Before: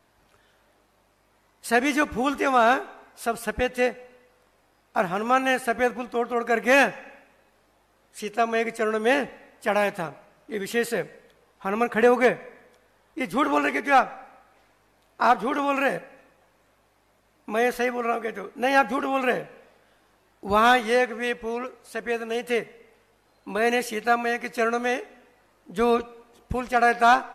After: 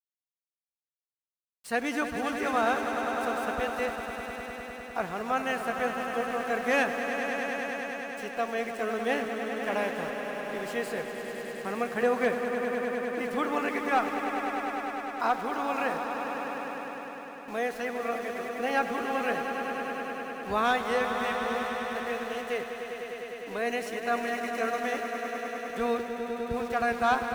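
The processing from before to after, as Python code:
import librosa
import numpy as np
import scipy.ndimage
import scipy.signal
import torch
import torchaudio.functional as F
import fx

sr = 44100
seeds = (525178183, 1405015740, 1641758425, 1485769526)

y = scipy.signal.sosfilt(scipy.signal.bessel(2, 11000.0, 'lowpass', norm='mag', fs=sr, output='sos'), x)
y = np.where(np.abs(y) >= 10.0 ** (-38.0 / 20.0), y, 0.0)
y = fx.echo_swell(y, sr, ms=101, loudest=5, wet_db=-10)
y = y * 10.0 ** (-8.0 / 20.0)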